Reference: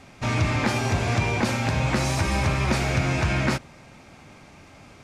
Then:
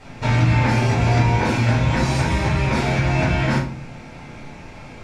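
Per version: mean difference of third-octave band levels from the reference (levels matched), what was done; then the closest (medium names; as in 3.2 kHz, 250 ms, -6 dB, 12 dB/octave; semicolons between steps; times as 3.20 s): 4.0 dB: treble shelf 8.9 kHz -10 dB; compression, threshold -25 dBFS, peak gain reduction 7.5 dB; flutter echo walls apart 6 m, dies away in 0.22 s; simulated room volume 320 m³, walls furnished, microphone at 4.6 m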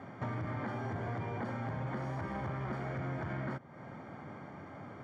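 8.0 dB: hard clipper -21 dBFS, distortion -12 dB; high-pass 99 Hz 24 dB/octave; compression 4:1, threshold -39 dBFS, peak gain reduction 14.5 dB; Savitzky-Golay filter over 41 samples; trim +2 dB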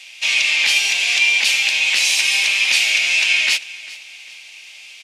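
16.0 dB: octave divider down 2 oct, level +1 dB; high-pass 1.1 kHz 12 dB/octave; resonant high shelf 1.9 kHz +13 dB, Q 3; on a send: feedback delay 397 ms, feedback 35%, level -19 dB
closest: first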